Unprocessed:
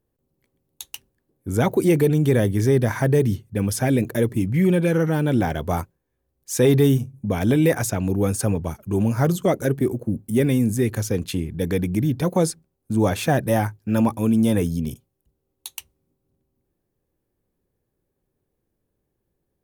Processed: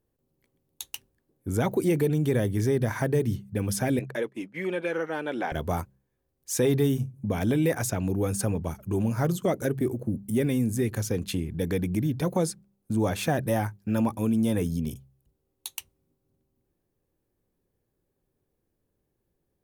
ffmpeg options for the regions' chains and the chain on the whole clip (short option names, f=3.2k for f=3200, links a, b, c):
-filter_complex "[0:a]asettb=1/sr,asplit=3[a][b][c];[a]atrim=end=3.994[d];[b]atrim=start=3.99:end=5.52,asetpts=PTS-STARTPTS,afade=t=in:d=0.004:c=qsin,afade=t=out:st=1.526:d=0.004:c=qsin,aemphasis=mode=production:type=riaa,agate=range=-33dB:threshold=-26dB:ratio=3:release=100:detection=peak,highpass=290,lowpass=2.3k[e];[c]atrim=start=5.516[f];[d][e]acrossfade=d=0.004:c1=hsin:c2=qsin[g];[g][f]acrossfade=d=0.004:c1=qsin:c2=hsin,bandreject=f=66.18:t=h:w=4,bandreject=f=132.36:t=h:w=4,bandreject=f=198.54:t=h:w=4,acompressor=threshold=-27dB:ratio=1.5,volume=-1.5dB"